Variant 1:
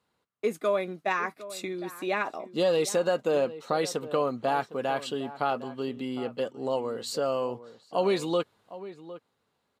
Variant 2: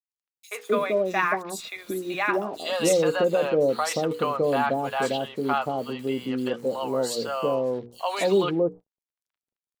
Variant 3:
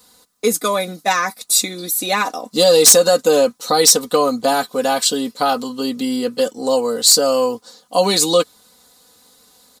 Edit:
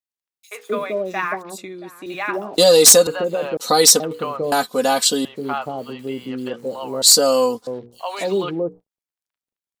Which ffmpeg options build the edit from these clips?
-filter_complex "[2:a]asplit=4[a][b][c][d];[1:a]asplit=6[e][f][g][h][i][j];[e]atrim=end=1.582[k];[0:a]atrim=start=1.578:end=2.062[l];[f]atrim=start=2.058:end=2.582[m];[a]atrim=start=2.578:end=3.072[n];[g]atrim=start=3.068:end=3.572[o];[b]atrim=start=3.568:end=4.002[p];[h]atrim=start=3.998:end=4.522[q];[c]atrim=start=4.518:end=5.252[r];[i]atrim=start=5.248:end=7.022[s];[d]atrim=start=7.018:end=7.672[t];[j]atrim=start=7.668[u];[k][l]acrossfade=d=0.004:c1=hsin:c2=hsin[v];[v][m]acrossfade=d=0.004:c1=hsin:c2=hsin[w];[w][n]acrossfade=d=0.004:c1=hsin:c2=hsin[x];[x][o]acrossfade=d=0.004:c1=hsin:c2=hsin[y];[y][p]acrossfade=d=0.004:c1=hsin:c2=hsin[z];[z][q]acrossfade=d=0.004:c1=hsin:c2=hsin[aa];[aa][r]acrossfade=d=0.004:c1=hsin:c2=hsin[ab];[ab][s]acrossfade=d=0.004:c1=hsin:c2=hsin[ac];[ac][t]acrossfade=d=0.004:c1=hsin:c2=hsin[ad];[ad][u]acrossfade=d=0.004:c1=hsin:c2=hsin"

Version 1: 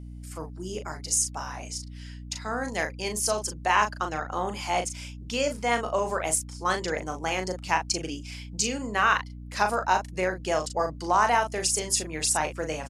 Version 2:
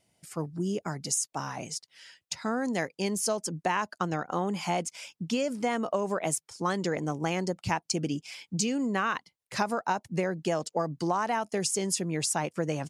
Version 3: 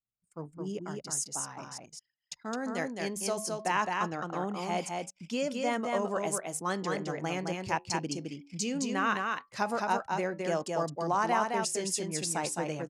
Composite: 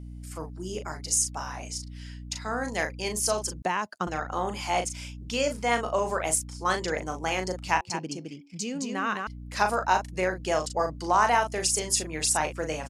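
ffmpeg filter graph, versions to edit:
-filter_complex "[0:a]asplit=3[a][b][c];[a]atrim=end=3.622[d];[1:a]atrim=start=3.618:end=4.072[e];[b]atrim=start=4.068:end=7.812[f];[2:a]atrim=start=7.808:end=9.272[g];[c]atrim=start=9.268[h];[d][e]acrossfade=d=0.004:c1=hsin:c2=hsin[i];[i][f]acrossfade=d=0.004:c1=hsin:c2=hsin[j];[j][g]acrossfade=d=0.004:c1=hsin:c2=hsin[k];[k][h]acrossfade=d=0.004:c1=hsin:c2=hsin"

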